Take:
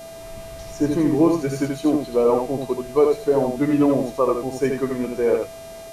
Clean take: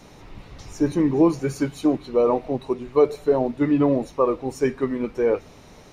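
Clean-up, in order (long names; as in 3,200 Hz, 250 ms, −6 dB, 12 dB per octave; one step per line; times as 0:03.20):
hum removal 401.7 Hz, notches 32
notch filter 660 Hz, Q 30
echo removal 80 ms −4.5 dB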